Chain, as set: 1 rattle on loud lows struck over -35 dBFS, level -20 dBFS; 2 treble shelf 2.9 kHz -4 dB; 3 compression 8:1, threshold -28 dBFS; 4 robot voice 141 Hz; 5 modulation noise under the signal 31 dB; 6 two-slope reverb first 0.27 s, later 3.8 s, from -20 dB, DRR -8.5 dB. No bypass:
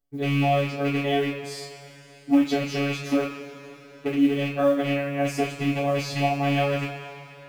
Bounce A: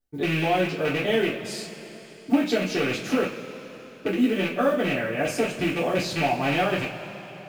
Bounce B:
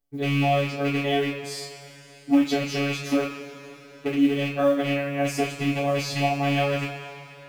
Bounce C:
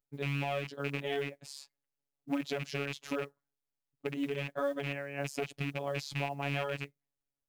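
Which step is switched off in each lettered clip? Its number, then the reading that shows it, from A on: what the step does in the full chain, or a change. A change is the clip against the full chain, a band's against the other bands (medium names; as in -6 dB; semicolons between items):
4, 125 Hz band -5.5 dB; 2, 8 kHz band +3.0 dB; 6, crest factor change +4.5 dB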